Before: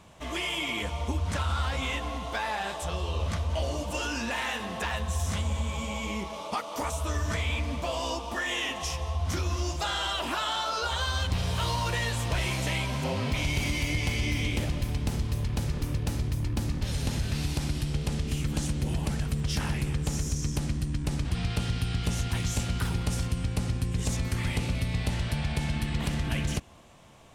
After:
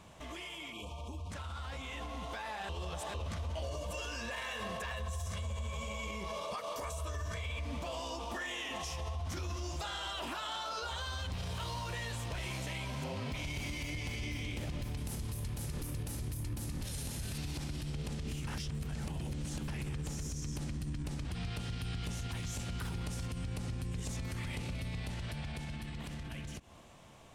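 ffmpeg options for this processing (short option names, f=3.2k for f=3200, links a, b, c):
-filter_complex "[0:a]asplit=3[a][b][c];[a]afade=t=out:st=0.72:d=0.02[d];[b]asuperstop=centerf=1700:order=20:qfactor=1.6,afade=t=in:st=0.72:d=0.02,afade=t=out:st=1.3:d=0.02[e];[c]afade=t=in:st=1.3:d=0.02[f];[d][e][f]amix=inputs=3:normalize=0,asettb=1/sr,asplit=3[g][h][i];[g]atrim=end=3.654[j];[h]atrim=start=3.65:end=7.65,asetpts=PTS-STARTPTS,afade=t=in:d=0.004:c=qsin,afade=t=out:st=3.996:d=0.004:c=qsin,aecho=1:1:1.8:0.57,atrim=end_sample=176400[k];[i]atrim=start=7.646[l];[j][k]acrossfade=d=0.004:c1=hsin:c2=qsin[m];[m][l]acrossfade=d=0.004:c1=qsin:c2=hsin,asettb=1/sr,asplit=3[n][o][p];[n]atrim=end=14.974[q];[o]atrim=start=14.97:end=17.38,asetpts=PTS-STARTPTS,afade=t=in:d=0.004:c=qsin,afade=t=out:st=2.406:d=0.004:c=qsin,equalizer=f=11k:w=0.89:g=14.5[r];[p]atrim=start=17.376[s];[q][r]acrossfade=d=0.004:c1=hsin:c2=qsin[t];[t][s]acrossfade=d=0.004:c1=qsin:c2=hsin,asplit=5[u][v][w][x][y];[u]atrim=end=2.692[z];[v]atrim=start=2.688:end=3.142,asetpts=PTS-STARTPTS,areverse[aa];[w]atrim=start=3.138:end=18.472[ab];[x]atrim=start=18.468:end=19.682,asetpts=PTS-STARTPTS,areverse[ac];[y]atrim=start=19.678[ad];[z][aa]acrossfade=d=0.004:c1=hsin:c2=hsin[ae];[ae][ab]acrossfade=d=0.004:c1=hsin:c2=hsin[af];[af][ac]acrossfade=d=0.004:c1=hsin:c2=hsin[ag];[ag][ad]acrossfade=d=0.004:c1=hsin:c2=hsin,acompressor=threshold=-32dB:ratio=6,alimiter=level_in=10.5dB:limit=-24dB:level=0:latency=1:release=69,volume=-10.5dB,dynaudnorm=f=380:g=11:m=5dB,volume=-2dB"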